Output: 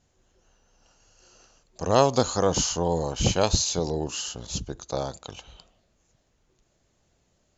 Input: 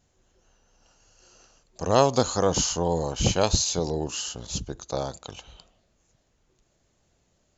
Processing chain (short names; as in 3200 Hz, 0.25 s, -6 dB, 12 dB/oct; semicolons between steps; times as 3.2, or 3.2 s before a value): LPF 9600 Hz